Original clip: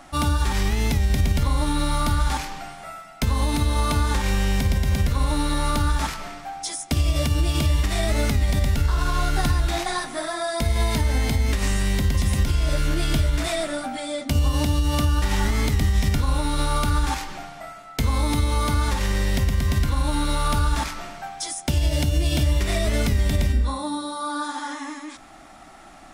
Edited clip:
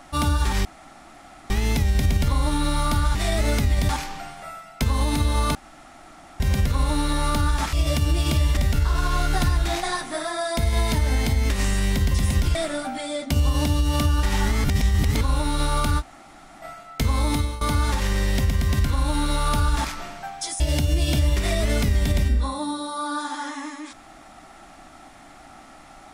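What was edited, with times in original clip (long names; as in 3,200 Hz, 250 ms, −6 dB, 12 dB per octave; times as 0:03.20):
0:00.65: splice in room tone 0.85 s
0:03.96–0:04.81: fill with room tone
0:06.14–0:07.02: remove
0:07.86–0:08.60: move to 0:02.30
0:12.58–0:13.54: remove
0:15.63–0:16.20: reverse
0:16.99–0:17.61: fill with room tone, crossfade 0.06 s
0:18.34–0:18.60: fade out, to −18 dB
0:21.59–0:21.84: remove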